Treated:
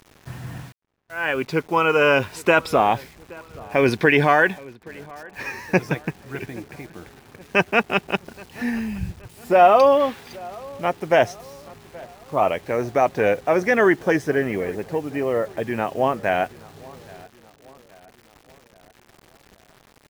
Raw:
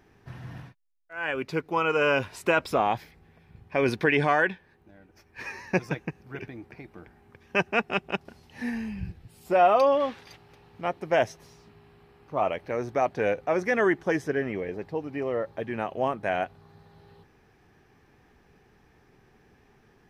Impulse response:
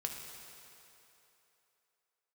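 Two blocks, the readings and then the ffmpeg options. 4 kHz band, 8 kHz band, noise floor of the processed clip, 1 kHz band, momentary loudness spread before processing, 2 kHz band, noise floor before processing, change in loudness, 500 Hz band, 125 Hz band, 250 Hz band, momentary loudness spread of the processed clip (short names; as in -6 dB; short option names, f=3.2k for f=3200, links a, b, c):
+6.5 dB, n/a, -56 dBFS, +6.5 dB, 18 LU, +6.5 dB, -61 dBFS, +6.5 dB, +6.5 dB, +6.5 dB, +6.5 dB, 21 LU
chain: -filter_complex "[0:a]acrusher=bits=8:mix=0:aa=0.000001,asplit=2[a][b];[b]adelay=824,lowpass=f=2k:p=1,volume=-22dB,asplit=2[c][d];[d]adelay=824,lowpass=f=2k:p=1,volume=0.53,asplit=2[e][f];[f]adelay=824,lowpass=f=2k:p=1,volume=0.53,asplit=2[g][h];[h]adelay=824,lowpass=f=2k:p=1,volume=0.53[i];[a][c][e][g][i]amix=inputs=5:normalize=0,volume=6.5dB"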